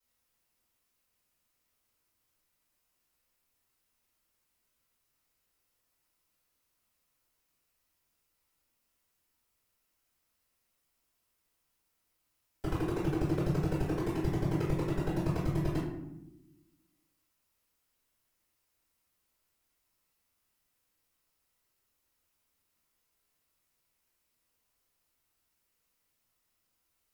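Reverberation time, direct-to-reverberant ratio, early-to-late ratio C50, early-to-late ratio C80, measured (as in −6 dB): 0.90 s, −15.0 dB, 2.5 dB, 6.0 dB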